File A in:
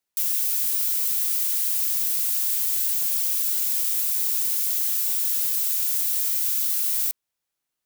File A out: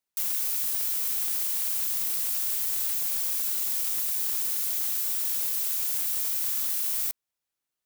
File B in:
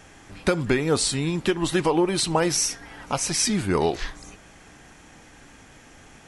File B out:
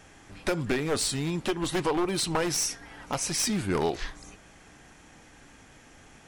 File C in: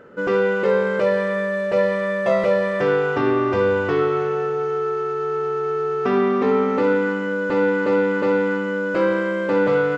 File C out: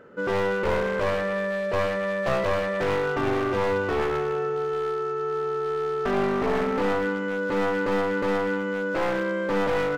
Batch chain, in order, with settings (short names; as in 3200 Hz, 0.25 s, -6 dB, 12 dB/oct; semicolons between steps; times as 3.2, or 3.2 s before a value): one-sided fold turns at -18 dBFS; gain -4 dB